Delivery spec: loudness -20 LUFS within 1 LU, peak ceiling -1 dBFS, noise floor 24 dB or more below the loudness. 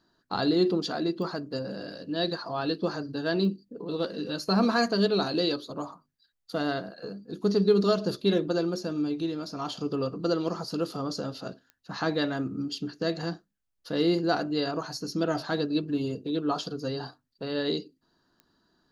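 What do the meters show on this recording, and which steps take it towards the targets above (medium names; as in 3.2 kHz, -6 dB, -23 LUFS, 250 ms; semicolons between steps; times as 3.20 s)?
clicks found 4; loudness -29.0 LUFS; peak level -11.5 dBFS; loudness target -20.0 LUFS
-> de-click; trim +9 dB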